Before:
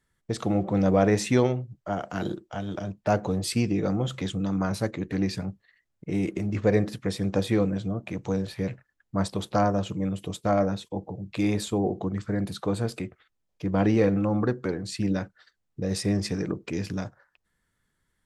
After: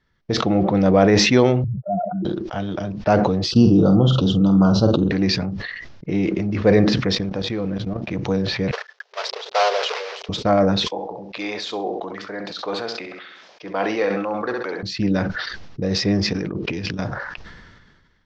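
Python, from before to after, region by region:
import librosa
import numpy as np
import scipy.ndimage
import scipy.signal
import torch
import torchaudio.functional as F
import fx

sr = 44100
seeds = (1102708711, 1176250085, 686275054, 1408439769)

y = fx.chain(x, sr, fx.spec_expand(power=3.7),
    fx.highpass(hz=100.0, slope=24), at=(1.64, 2.25))
y = fx.chain(y, sr, fx.ellip_bandstop(low_hz=1400.0, high_hz=2900.0, order=3, stop_db=50),
    fx.low_shelf(hz=340.0, db=7.5),
    fx.doubler(ms=47.0, db=-9.0), at=(3.51, 5.11))
y = fx.chain(y, sr, fx.law_mismatch(coded='A'),
    fx.level_steps(step_db=15), at=(7.15, 8.08))
y = fx.chain(y, sr, fx.block_float(bits=3),
    fx.brickwall_highpass(low_hz=390.0),
    fx.upward_expand(threshold_db=-33.0, expansion=2.5), at=(8.71, 10.29))
y = fx.chain(y, sr, fx.highpass(hz=580.0, slope=12),
    fx.room_flutter(wall_m=11.3, rt60_s=0.35), at=(10.87, 14.83))
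y = fx.chain(y, sr, fx.peak_eq(hz=2900.0, db=5.5, octaves=0.68),
    fx.over_compress(threshold_db=-35.0, ratio=-0.5), at=(16.33, 16.99))
y = scipy.signal.sosfilt(scipy.signal.butter(8, 5700.0, 'lowpass', fs=sr, output='sos'), y)
y = fx.dynamic_eq(y, sr, hz=110.0, q=1.5, threshold_db=-37.0, ratio=4.0, max_db=-4)
y = fx.sustainer(y, sr, db_per_s=34.0)
y = F.gain(torch.from_numpy(y), 6.5).numpy()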